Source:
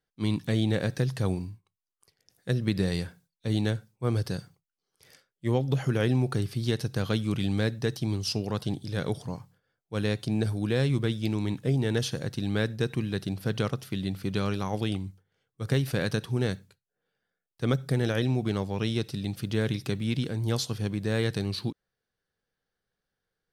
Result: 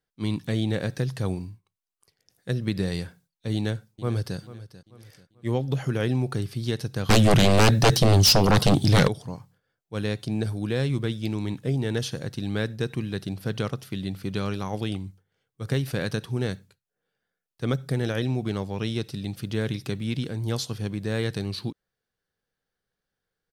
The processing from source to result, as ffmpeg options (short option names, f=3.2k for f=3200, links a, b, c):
-filter_complex "[0:a]asplit=2[a][b];[b]afade=t=in:st=3.54:d=0.01,afade=t=out:st=4.38:d=0.01,aecho=0:1:440|880|1320|1760:0.158489|0.0633957|0.0253583|0.0101433[c];[a][c]amix=inputs=2:normalize=0,asettb=1/sr,asplit=3[d][e][f];[d]atrim=end=7.094[g];[e]atrim=start=7.09:end=9.08,asetpts=PTS-STARTPTS,afade=t=in:d=0.004:c=qsin,afade=t=out:st=1.986:d=0.004:c=qsin,aeval=exprs='0.237*sin(PI/2*5.01*val(0)/0.237)':c=same[h];[f]atrim=start=9.076[i];[g][h]acrossfade=d=0.004:c1=hsin:c2=qsin[j];[j][i]acrossfade=d=0.004:c1=qsin:c2=hsin"